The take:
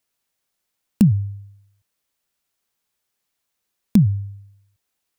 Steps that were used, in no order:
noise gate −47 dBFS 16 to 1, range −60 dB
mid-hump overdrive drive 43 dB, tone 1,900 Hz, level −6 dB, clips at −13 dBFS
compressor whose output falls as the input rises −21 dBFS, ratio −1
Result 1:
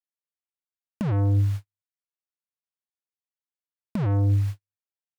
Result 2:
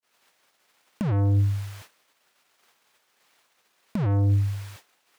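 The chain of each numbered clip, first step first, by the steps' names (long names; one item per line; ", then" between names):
noise gate, then mid-hump overdrive, then compressor whose output falls as the input rises
mid-hump overdrive, then noise gate, then compressor whose output falls as the input rises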